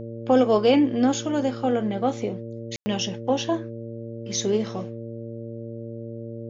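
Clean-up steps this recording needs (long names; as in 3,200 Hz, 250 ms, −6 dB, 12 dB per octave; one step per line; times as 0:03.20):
hum removal 115 Hz, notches 5
ambience match 0:02.76–0:02.86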